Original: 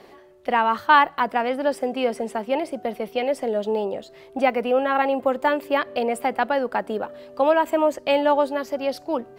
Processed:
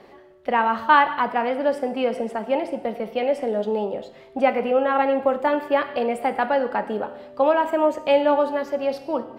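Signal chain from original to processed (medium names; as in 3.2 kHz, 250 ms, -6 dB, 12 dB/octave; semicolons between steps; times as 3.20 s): treble shelf 4.6 kHz -10 dB; gated-style reverb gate 290 ms falling, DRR 8 dB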